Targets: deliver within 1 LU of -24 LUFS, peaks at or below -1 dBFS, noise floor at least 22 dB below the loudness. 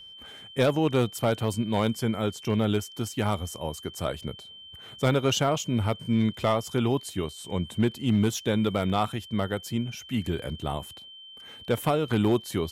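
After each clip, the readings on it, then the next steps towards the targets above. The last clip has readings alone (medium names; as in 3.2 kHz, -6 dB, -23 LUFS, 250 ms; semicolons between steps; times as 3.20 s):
clipped samples 0.4%; clipping level -15.0 dBFS; steady tone 3.1 kHz; tone level -44 dBFS; loudness -27.5 LUFS; peak level -15.0 dBFS; loudness target -24.0 LUFS
-> clip repair -15 dBFS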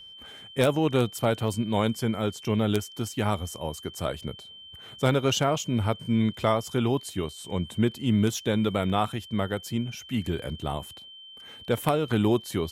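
clipped samples 0.0%; steady tone 3.1 kHz; tone level -44 dBFS
-> band-stop 3.1 kHz, Q 30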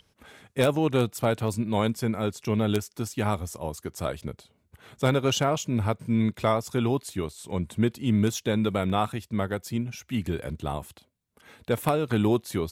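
steady tone not found; loudness -27.5 LUFS; peak level -6.0 dBFS; loudness target -24.0 LUFS
-> trim +3.5 dB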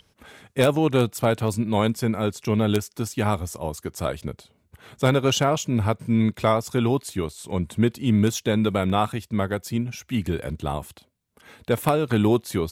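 loudness -24.0 LUFS; peak level -2.5 dBFS; noise floor -65 dBFS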